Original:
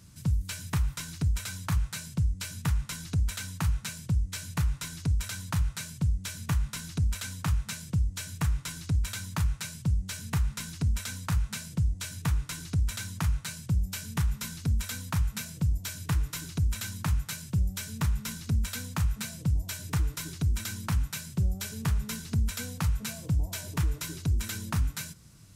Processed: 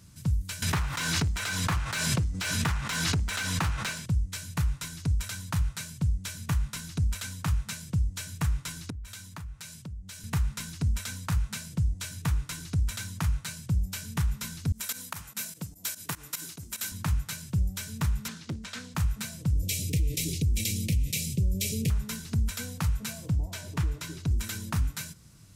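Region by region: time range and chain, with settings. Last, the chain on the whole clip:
0.62–4.06 overdrive pedal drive 22 dB, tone 2100 Hz, clips at -18 dBFS + backwards sustainer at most 30 dB/s
8.9–10.24 compressor 4:1, threshold -39 dBFS + three-band expander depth 70%
14.72–16.92 HPF 240 Hz + high shelf 8600 Hz +10 dB + pump 147 bpm, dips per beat 2, -16 dB, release 97 ms
18.28–18.95 BPF 170–5800 Hz + Doppler distortion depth 0.7 ms
19.53–21.9 elliptic band-stop 510–2300 Hz + dynamic EQ 790 Hz, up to +6 dB, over -52 dBFS, Q 0.79 + fast leveller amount 50%
23.3–24.31 HPF 42 Hz + high shelf 8400 Hz -10 dB
whole clip: dry

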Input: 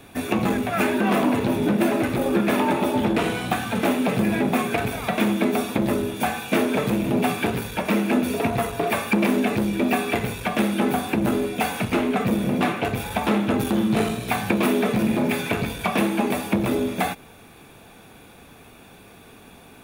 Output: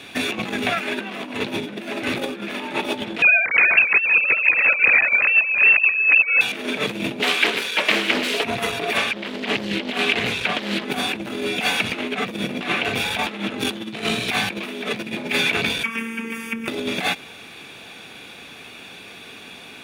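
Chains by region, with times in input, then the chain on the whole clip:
3.22–6.41 sine-wave speech + echo 0.36 s -3.5 dB + inverted band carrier 3000 Hz
7.2–8.44 HPF 390 Hz + bell 790 Hz -5 dB 0.35 oct + Doppler distortion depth 0.44 ms
8.97–10.85 high shelf 9500 Hz -7.5 dB + Doppler distortion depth 0.63 ms
15.83–16.68 compressor 2.5:1, threshold -27 dBFS + robotiser 227 Hz + fixed phaser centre 1700 Hz, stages 4
whole clip: high shelf 8600 Hz -8 dB; negative-ratio compressor -25 dBFS, ratio -0.5; weighting filter D

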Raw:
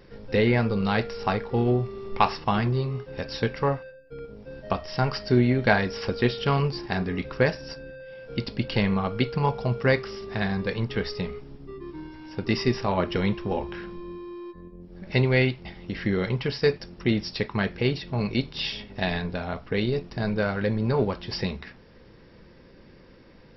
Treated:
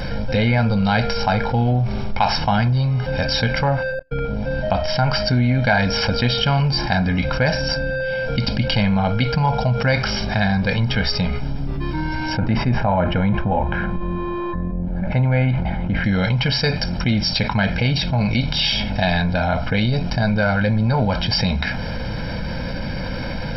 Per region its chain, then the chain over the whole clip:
3.99–5.19 LPF 4800 Hz + gate -50 dBFS, range -44 dB
12.37–16.04 LPF 1600 Hz + sustainer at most 110 dB/s
whole clip: comb 1.3 ms, depth 87%; fast leveller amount 70%; gain -2 dB

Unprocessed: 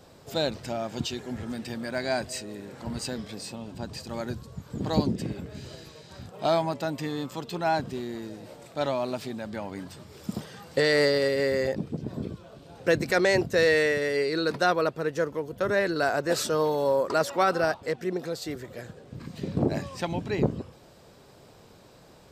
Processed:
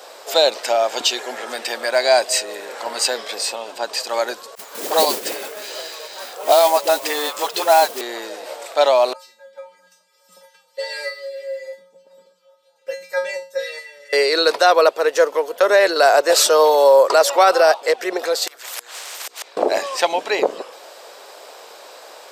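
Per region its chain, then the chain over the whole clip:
4.55–8.01 dispersion highs, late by 71 ms, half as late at 370 Hz + modulation noise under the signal 16 dB
9.13–14.13 level quantiser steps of 11 dB + LFO notch sine 4.8 Hz 620–3300 Hz + resonator 180 Hz, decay 0.32 s, harmonics odd, mix 100%
18.47–19.57 flipped gate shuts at -27 dBFS, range -32 dB + notches 60/120/180/240/300/360/420/480 Hz + spectral compressor 10:1
whole clip: HPF 510 Hz 24 dB/oct; dynamic EQ 1600 Hz, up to -6 dB, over -41 dBFS, Q 1.3; maximiser +19 dB; gain -2.5 dB

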